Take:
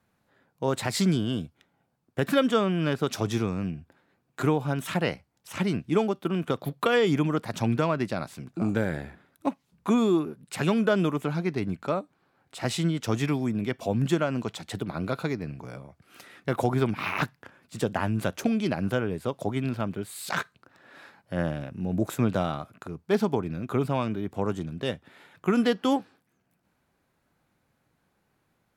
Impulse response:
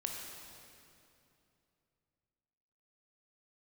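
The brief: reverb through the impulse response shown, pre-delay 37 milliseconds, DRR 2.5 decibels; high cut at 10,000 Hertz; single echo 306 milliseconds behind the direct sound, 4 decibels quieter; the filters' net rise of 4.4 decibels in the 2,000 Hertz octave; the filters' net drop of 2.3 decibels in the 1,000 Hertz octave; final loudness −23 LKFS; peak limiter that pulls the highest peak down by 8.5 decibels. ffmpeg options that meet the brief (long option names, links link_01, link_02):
-filter_complex "[0:a]lowpass=10000,equalizer=frequency=1000:width_type=o:gain=-6,equalizer=frequency=2000:width_type=o:gain=8,alimiter=limit=-18dB:level=0:latency=1,aecho=1:1:306:0.631,asplit=2[link_01][link_02];[1:a]atrim=start_sample=2205,adelay=37[link_03];[link_02][link_03]afir=irnorm=-1:irlink=0,volume=-3.5dB[link_04];[link_01][link_04]amix=inputs=2:normalize=0,volume=4.5dB"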